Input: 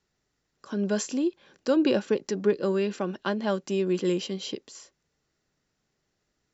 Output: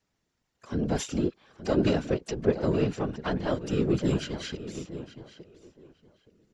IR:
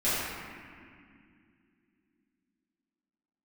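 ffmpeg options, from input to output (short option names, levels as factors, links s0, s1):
-filter_complex "[0:a]asplit=2[s0][s1];[s1]adelay=870,lowpass=f=2900:p=1,volume=0.251,asplit=2[s2][s3];[s3]adelay=870,lowpass=f=2900:p=1,volume=0.23,asplit=2[s4][s5];[s5]adelay=870,lowpass=f=2900:p=1,volume=0.23[s6];[s0][s2][s4][s6]amix=inputs=4:normalize=0,asplit=4[s7][s8][s9][s10];[s8]asetrate=22050,aresample=44100,atempo=2,volume=0.631[s11];[s9]asetrate=58866,aresample=44100,atempo=0.749154,volume=0.126[s12];[s10]asetrate=66075,aresample=44100,atempo=0.66742,volume=0.126[s13];[s7][s11][s12][s13]amix=inputs=4:normalize=0,afftfilt=real='hypot(re,im)*cos(2*PI*random(0))':imag='hypot(re,im)*sin(2*PI*random(1))':win_size=512:overlap=0.75,volume=1.41"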